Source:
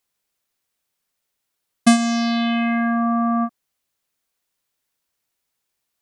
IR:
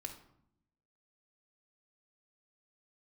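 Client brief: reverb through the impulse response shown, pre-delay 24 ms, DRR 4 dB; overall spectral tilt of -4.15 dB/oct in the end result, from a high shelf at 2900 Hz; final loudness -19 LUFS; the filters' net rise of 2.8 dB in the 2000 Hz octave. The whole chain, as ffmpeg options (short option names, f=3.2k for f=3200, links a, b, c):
-filter_complex "[0:a]equalizer=f=2k:t=o:g=6,highshelf=f=2.9k:g=-7,asplit=2[a][b];[1:a]atrim=start_sample=2205,adelay=24[c];[b][c]afir=irnorm=-1:irlink=0,volume=-1dB[d];[a][d]amix=inputs=2:normalize=0,volume=0.5dB"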